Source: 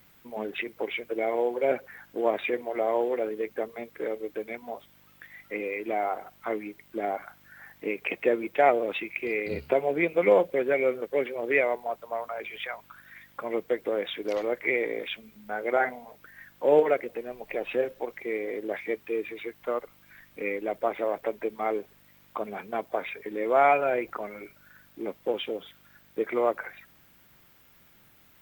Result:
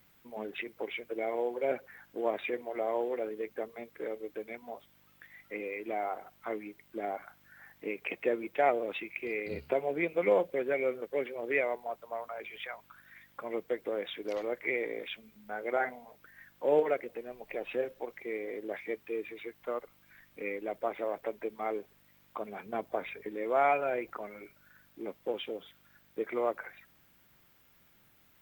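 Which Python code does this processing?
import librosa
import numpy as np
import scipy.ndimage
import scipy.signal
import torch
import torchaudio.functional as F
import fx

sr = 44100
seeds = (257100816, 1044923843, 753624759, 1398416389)

y = fx.low_shelf(x, sr, hz=360.0, db=6.5, at=(22.66, 23.31))
y = F.gain(torch.from_numpy(y), -6.0).numpy()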